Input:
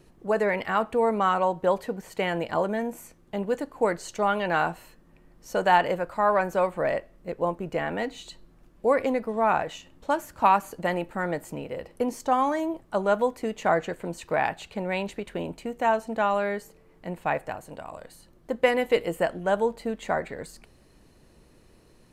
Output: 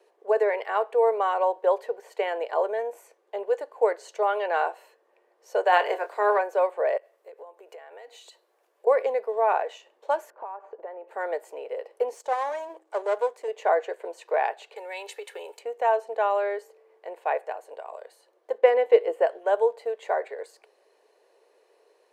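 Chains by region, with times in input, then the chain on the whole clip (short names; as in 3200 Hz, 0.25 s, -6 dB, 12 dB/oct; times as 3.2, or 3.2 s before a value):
5.71–6.37 spectral limiter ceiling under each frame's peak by 13 dB + added noise pink -60 dBFS + doubler 24 ms -10 dB
6.97–8.87 HPF 460 Hz 6 dB/oct + compressor 12:1, threshold -41 dBFS + high shelf 8000 Hz +11.5 dB
10.3–11.08 LPF 1300 Hz + compressor 12:1, threshold -32 dBFS
12.14–13.48 half-wave gain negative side -12 dB + bell 7600 Hz +7.5 dB + de-hum 106.6 Hz, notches 3
14.76–15.59 compressor 4:1, threshold -30 dBFS + tilt +4 dB/oct + comb 2.3 ms, depth 57%
18.58–19.27 LPF 3300 Hz 6 dB/oct + low shelf 320 Hz +8.5 dB
whole clip: Chebyshev high-pass 420 Hz, order 5; tilt -3 dB/oct; notch 1300 Hz, Q 9.9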